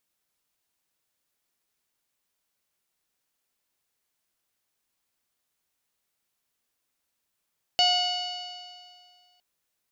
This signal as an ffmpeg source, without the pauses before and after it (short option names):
-f lavfi -i "aevalsrc='0.075*pow(10,-3*t/2.08)*sin(2*PI*719.83*t)+0.01*pow(10,-3*t/2.08)*sin(2*PI*1444.6*t)+0.0158*pow(10,-3*t/2.08)*sin(2*PI*2179.21*t)+0.1*pow(10,-3*t/2.08)*sin(2*PI*2928.44*t)+0.0141*pow(10,-3*t/2.08)*sin(2*PI*3696.91*t)+0.0708*pow(10,-3*t/2.08)*sin(2*PI*4489.05*t)+0.0224*pow(10,-3*t/2.08)*sin(2*PI*5309.04*t)+0.0106*pow(10,-3*t/2.08)*sin(2*PI*6160.82*t)+0.0075*pow(10,-3*t/2.08)*sin(2*PI*7048.04*t)':d=1.61:s=44100"